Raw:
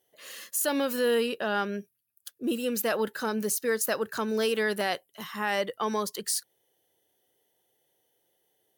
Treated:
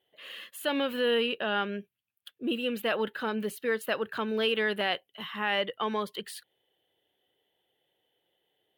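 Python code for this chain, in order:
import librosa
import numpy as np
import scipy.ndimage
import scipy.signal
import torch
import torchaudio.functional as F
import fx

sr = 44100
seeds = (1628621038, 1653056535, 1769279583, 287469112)

y = fx.high_shelf_res(x, sr, hz=4300.0, db=-11.5, q=3.0)
y = F.gain(torch.from_numpy(y), -2.0).numpy()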